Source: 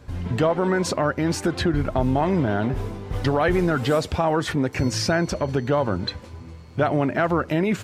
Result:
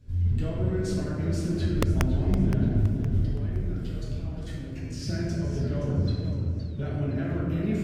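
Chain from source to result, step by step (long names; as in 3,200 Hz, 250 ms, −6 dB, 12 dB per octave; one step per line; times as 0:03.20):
0:03.17–0:05.02: output level in coarse steps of 15 dB
guitar amp tone stack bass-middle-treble 10-0-1
convolution reverb RT60 2.2 s, pre-delay 5 ms, DRR −7 dB
wrap-around overflow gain 17.5 dB
feedback echo with a swinging delay time 516 ms, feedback 37%, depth 180 cents, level −11 dB
level +4 dB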